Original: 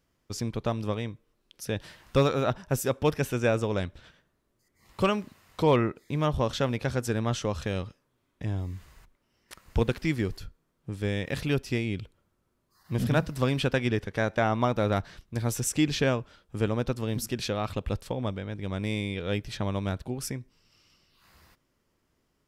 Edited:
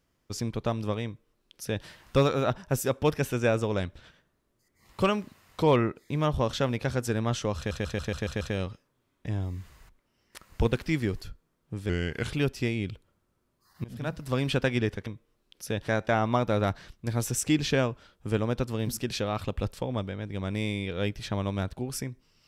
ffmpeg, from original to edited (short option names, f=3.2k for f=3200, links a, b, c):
-filter_complex "[0:a]asplit=12[a][b][c][d][e][f][g][h][i][j][k][l];[a]atrim=end=7.712[m];[b]atrim=start=7.568:end=7.712[n];[c]atrim=start=7.568:end=7.712[o];[d]atrim=start=7.568:end=7.712[p];[e]atrim=start=7.568:end=7.712[q];[f]atrim=start=7.568:end=7.712[r];[g]atrim=start=7.568:end=11.054[s];[h]atrim=start=11.05:end=11.43,asetpts=PTS-STARTPTS,asetrate=37926,aresample=44100,atrim=end_sample=19486,asetpts=PTS-STARTPTS[t];[i]atrim=start=11.426:end=12.94,asetpts=PTS-STARTPTS,afade=t=out:st=1.51:d=0.004:c=hsin:silence=0.0749894[u];[j]atrim=start=12.94:end=14.162,asetpts=PTS-STARTPTS,afade=t=in:d=0.67:silence=0.0749894[v];[k]atrim=start=1.048:end=1.862[w];[l]atrim=start=14.158[x];[m][n]acrossfade=d=0.004:c1=hsin:c2=hsin[y];[y][o]acrossfade=d=0.004:c1=hsin:c2=hsin[z];[z][p]acrossfade=d=0.004:c1=hsin:c2=hsin[aa];[aa][q]acrossfade=d=0.004:c1=hsin:c2=hsin[ab];[ab][r]acrossfade=d=0.004:c1=hsin:c2=hsin[ac];[ac][s]acrossfade=d=0.004:c1=hsin:c2=hsin[ad];[ad][t]acrossfade=d=0.004:c1=hsin:c2=hsin[ae];[u][v]concat=n=2:v=0:a=1[af];[ae][af]acrossfade=d=0.004:c1=hsin:c2=hsin[ag];[ag][w]acrossfade=d=0.004:c1=hsin:c2=hsin[ah];[ah][x]acrossfade=d=0.004:c1=hsin:c2=hsin"